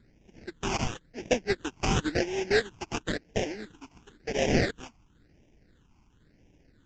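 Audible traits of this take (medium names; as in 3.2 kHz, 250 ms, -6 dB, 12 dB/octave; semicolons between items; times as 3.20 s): aliases and images of a low sample rate 1.2 kHz, jitter 20%; phasing stages 8, 0.96 Hz, lowest notch 510–1300 Hz; Vorbis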